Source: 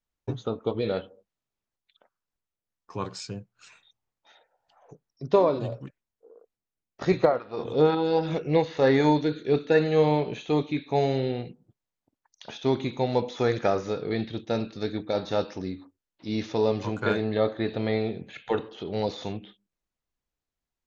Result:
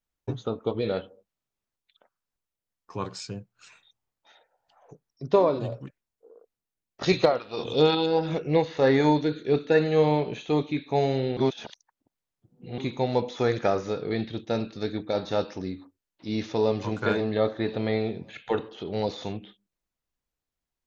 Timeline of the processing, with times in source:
0:07.03–0:08.06: flat-topped bell 4,100 Hz +11.5 dB
0:11.37–0:12.78: reverse
0:16.38–0:16.78: delay throw 530 ms, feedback 30%, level −12.5 dB

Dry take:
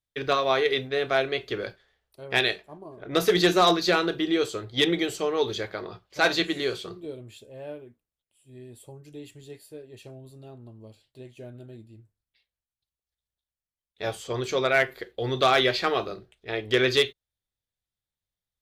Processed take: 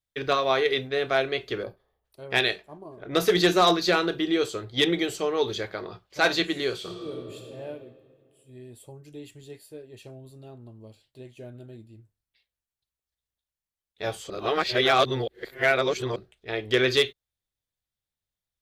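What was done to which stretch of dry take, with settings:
0:01.63–0:02.05: gain on a spectral selection 1,300–9,700 Hz −15 dB
0:06.76–0:07.58: thrown reverb, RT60 2.3 s, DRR 1 dB
0:14.30–0:16.16: reverse

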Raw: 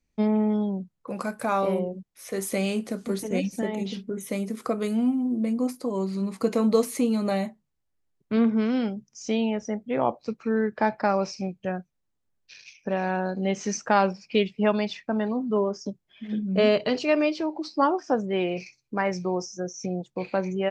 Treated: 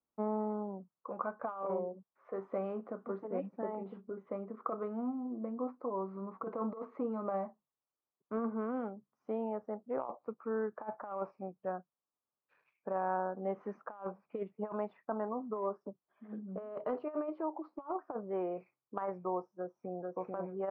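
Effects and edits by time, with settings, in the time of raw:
0:19.54–0:20.16: delay throw 440 ms, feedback 20%, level −1.5 dB
whole clip: Chebyshev low-pass filter 1,200 Hz, order 4; first difference; compressor whose output falls as the input rises −48 dBFS, ratio −0.5; level +13.5 dB

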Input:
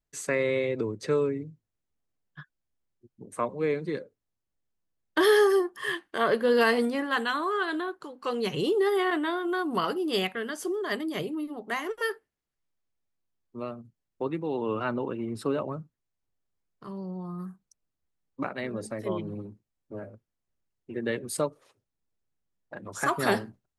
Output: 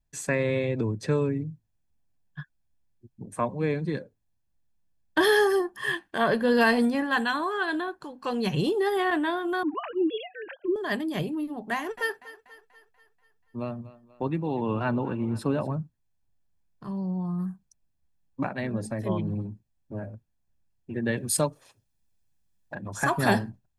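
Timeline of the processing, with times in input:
0:09.63–0:10.76: three sine waves on the formant tracks
0:11.73–0:15.72: feedback echo with a high-pass in the loop 242 ms, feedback 54%, high-pass 260 Hz, level −16.5 dB
0:21.17–0:22.75: high-shelf EQ 2,100 Hz +8.5 dB
whole clip: low-shelf EQ 320 Hz +8 dB; comb filter 1.2 ms, depth 43%

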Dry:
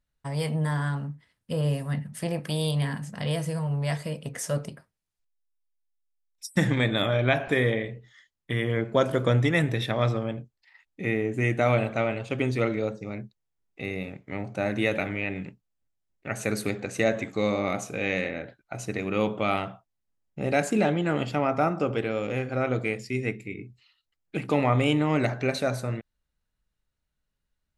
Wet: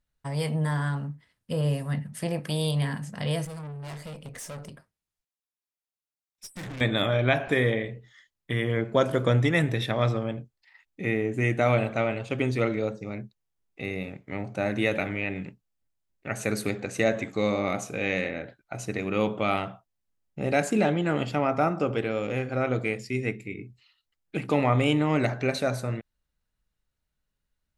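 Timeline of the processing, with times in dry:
0:03.45–0:06.81: tube saturation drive 36 dB, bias 0.45

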